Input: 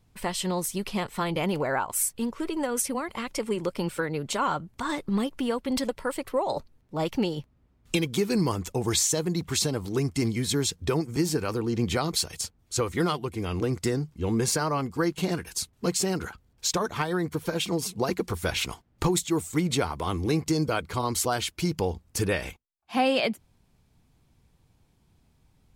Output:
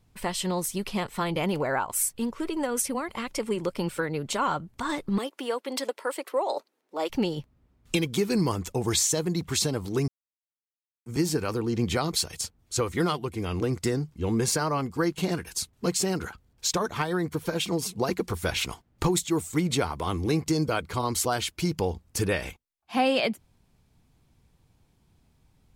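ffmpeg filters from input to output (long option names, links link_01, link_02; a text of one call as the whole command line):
ffmpeg -i in.wav -filter_complex "[0:a]asettb=1/sr,asplit=3[link_01][link_02][link_03];[link_01]atrim=end=5.184[link_04];[link_02]atrim=start=5.18:end=7.1,asetpts=PTS-STARTPTS,afade=type=in:duration=0.004:curve=qsin,afade=type=out:start_time=1.916:duration=0.004:curve=qsin,highpass=frequency=330:width=0.5412,highpass=frequency=330:width=1.3066[link_05];[link_03]atrim=start=7.096[link_06];[link_04][link_05]acrossfade=duration=0.004:curve1=hsin:curve2=qsin[link_07];[link_07][link_06]acrossfade=duration=0.004:curve1=qsin:curve2=hsin,asplit=3[link_08][link_09][link_10];[link_08]atrim=end=10.08,asetpts=PTS-STARTPTS,afade=type=out:start_time=10.076:duration=0.004:curve=hsin[link_11];[link_09]atrim=start=10.08:end=11.06,asetpts=PTS-STARTPTS,volume=0[link_12];[link_10]atrim=start=11.06,asetpts=PTS-STARTPTS,afade=type=in:duration=0.004:curve=hsin[link_13];[link_11][link_12][link_13]concat=n=3:v=0:a=1" out.wav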